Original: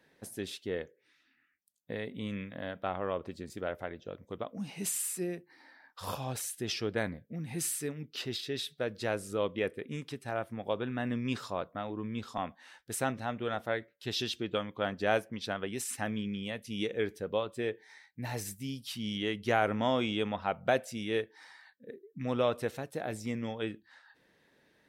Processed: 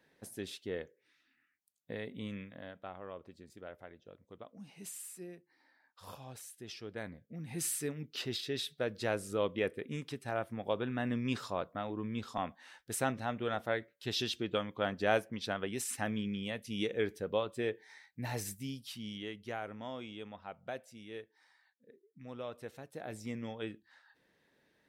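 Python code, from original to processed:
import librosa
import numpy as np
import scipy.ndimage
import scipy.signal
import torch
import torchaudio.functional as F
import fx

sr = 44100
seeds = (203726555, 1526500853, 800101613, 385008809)

y = fx.gain(x, sr, db=fx.line((2.22, -3.5), (2.94, -12.0), (6.83, -12.0), (7.73, -1.0), (18.54, -1.0), (19.66, -14.0), (22.46, -14.0), (23.22, -5.0)))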